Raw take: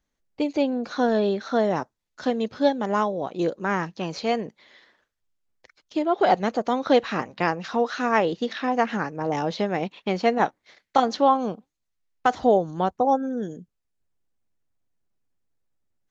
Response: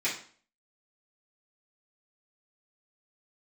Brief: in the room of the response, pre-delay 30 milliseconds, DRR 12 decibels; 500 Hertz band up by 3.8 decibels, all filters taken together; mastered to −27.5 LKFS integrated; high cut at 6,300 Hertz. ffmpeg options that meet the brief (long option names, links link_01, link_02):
-filter_complex "[0:a]lowpass=6300,equalizer=frequency=500:width_type=o:gain=4.5,asplit=2[link_01][link_02];[1:a]atrim=start_sample=2205,adelay=30[link_03];[link_02][link_03]afir=irnorm=-1:irlink=0,volume=-21dB[link_04];[link_01][link_04]amix=inputs=2:normalize=0,volume=-5.5dB"